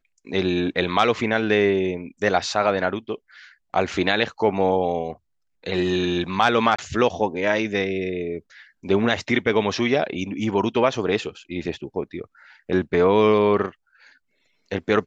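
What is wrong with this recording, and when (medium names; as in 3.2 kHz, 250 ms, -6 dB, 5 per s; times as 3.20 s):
6.76–6.79 s: dropout 25 ms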